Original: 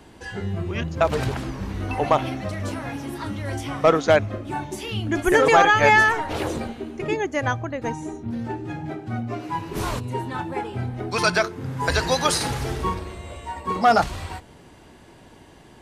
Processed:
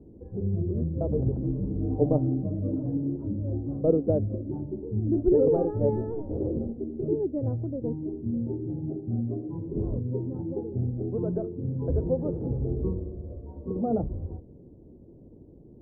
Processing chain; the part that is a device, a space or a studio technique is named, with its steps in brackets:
under water (low-pass filter 420 Hz 24 dB per octave; parametric band 520 Hz +5 dB 0.33 octaves)
0:01.43–0:03.16: comb filter 6.7 ms, depth 95%

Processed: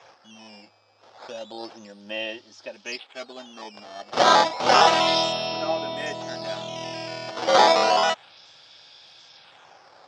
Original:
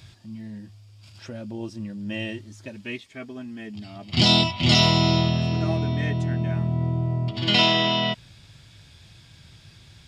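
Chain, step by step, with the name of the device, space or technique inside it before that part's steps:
circuit-bent sampling toy (sample-and-hold swept by an LFO 10×, swing 160% 0.31 Hz; loudspeaker in its box 520–5,800 Hz, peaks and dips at 530 Hz +6 dB, 800 Hz +8 dB, 1,300 Hz +3 dB, 2,000 Hz −4 dB, 3,400 Hz +4 dB, 5,200 Hz +9 dB)
level +2 dB

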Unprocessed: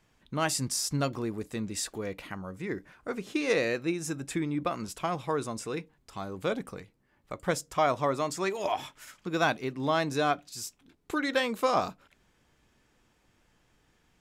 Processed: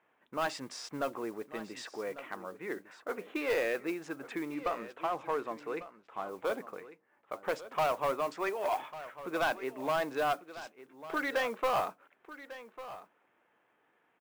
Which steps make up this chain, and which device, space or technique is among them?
adaptive Wiener filter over 9 samples
carbon microphone (band-pass filter 460–2,700 Hz; soft clipping −26 dBFS, distortion −10 dB; noise that follows the level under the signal 23 dB)
0:04.54–0:06.29: high-shelf EQ 7,600 Hz −12 dB
single-tap delay 1,148 ms −15 dB
level +2 dB

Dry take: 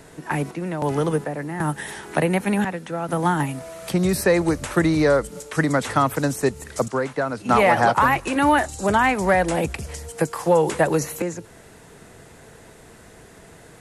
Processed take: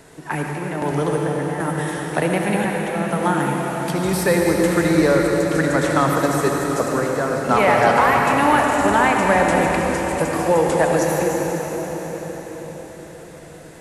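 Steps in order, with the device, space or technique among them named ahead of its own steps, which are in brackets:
cathedral (convolution reverb RT60 5.6 s, pre-delay 63 ms, DRR −1 dB)
low-shelf EQ 180 Hz −4 dB

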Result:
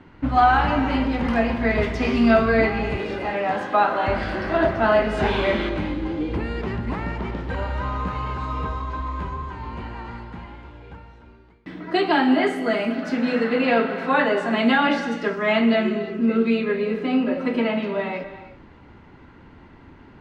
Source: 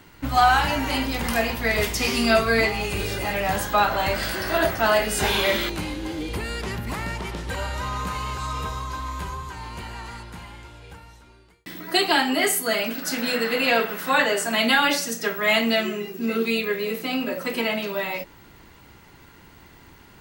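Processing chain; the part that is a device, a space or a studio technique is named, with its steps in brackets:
0:02.97–0:04.08: high-pass filter 250 Hz 12 dB per octave
phone in a pocket (low-pass filter 3,400 Hz 12 dB per octave; parametric band 250 Hz +4 dB 0.69 octaves; high-shelf EQ 2,200 Hz −10.5 dB)
reverb whose tail is shaped and stops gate 380 ms flat, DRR 9.5 dB
level +2.5 dB

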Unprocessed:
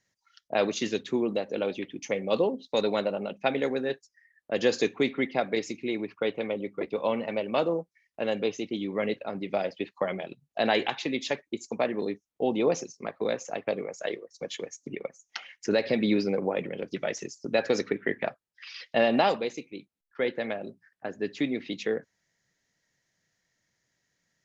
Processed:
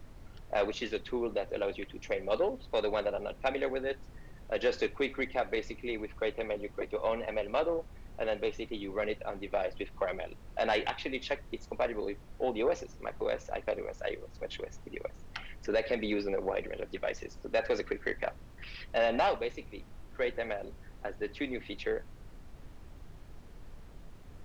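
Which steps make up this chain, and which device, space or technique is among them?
aircraft cabin announcement (band-pass filter 390–3,400 Hz; soft clipping −18 dBFS, distortion −18 dB; brown noise bed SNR 12 dB)
level −1.5 dB

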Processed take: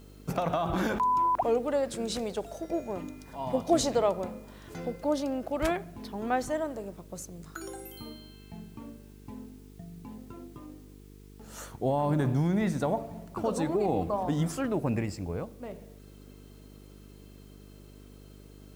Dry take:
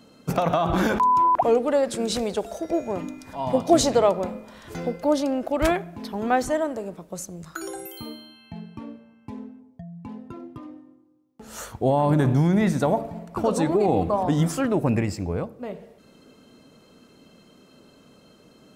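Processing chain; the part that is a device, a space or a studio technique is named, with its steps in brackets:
video cassette with head-switching buzz (hum with harmonics 50 Hz, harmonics 9, −44 dBFS −4 dB per octave; white noise bed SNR 33 dB)
level −7 dB

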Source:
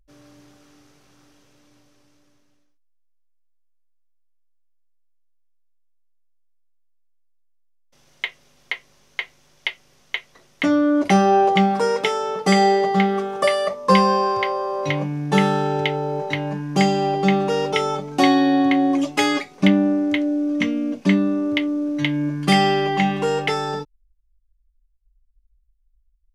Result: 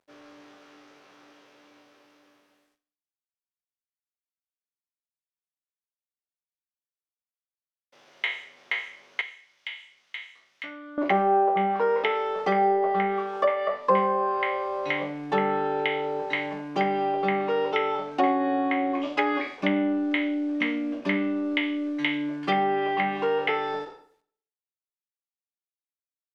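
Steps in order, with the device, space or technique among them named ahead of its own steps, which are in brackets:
peak hold with a decay on every bin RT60 0.43 s
phone line with mismatched companding (band-pass filter 380–3,300 Hz; mu-law and A-law mismatch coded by mu)
treble cut that deepens with the level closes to 1,200 Hz, closed at −14.5 dBFS
0:09.21–0:10.98: guitar amp tone stack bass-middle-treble 5-5-5
four-comb reverb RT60 0.6 s, combs from 30 ms, DRR 14.5 dB
level −3.5 dB

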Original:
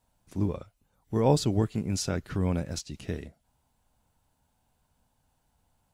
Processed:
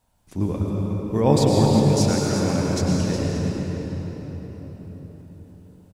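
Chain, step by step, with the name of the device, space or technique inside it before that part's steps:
cave (single-tap delay 364 ms −9.5 dB; convolution reverb RT60 4.9 s, pre-delay 94 ms, DRR −3 dB)
0:02.10–0:02.81: low-shelf EQ 130 Hz −9 dB
level +4 dB

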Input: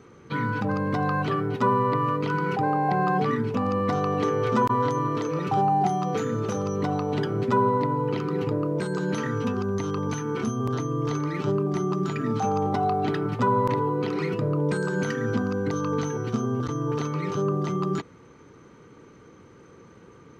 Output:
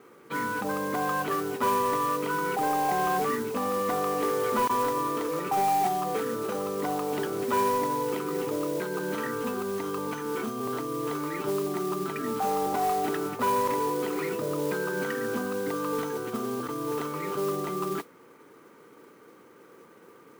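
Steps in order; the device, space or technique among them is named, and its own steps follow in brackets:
carbon microphone (band-pass filter 310–3,000 Hz; soft clipping −18.5 dBFS, distortion −19 dB; noise that follows the level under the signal 15 dB)

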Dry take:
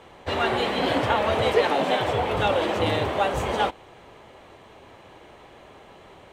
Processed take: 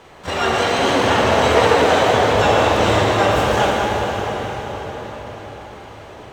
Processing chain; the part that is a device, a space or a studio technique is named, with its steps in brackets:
shimmer-style reverb (pitch-shifted copies added +12 semitones −8 dB; convolution reverb RT60 5.6 s, pre-delay 23 ms, DRR −3 dB)
level +2.5 dB

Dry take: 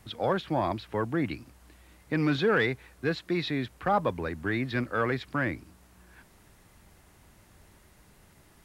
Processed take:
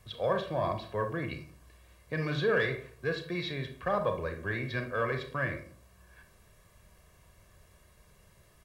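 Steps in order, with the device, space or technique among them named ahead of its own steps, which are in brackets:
microphone above a desk (comb filter 1.8 ms, depth 66%; convolution reverb RT60 0.55 s, pre-delay 28 ms, DRR 5.5 dB)
level −5.5 dB

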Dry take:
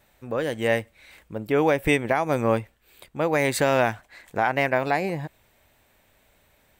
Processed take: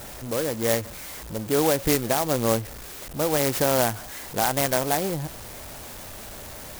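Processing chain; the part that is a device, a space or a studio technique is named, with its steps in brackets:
early CD player with a faulty converter (converter with a step at zero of −31.5 dBFS; converter with an unsteady clock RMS 0.11 ms)
level −1.5 dB

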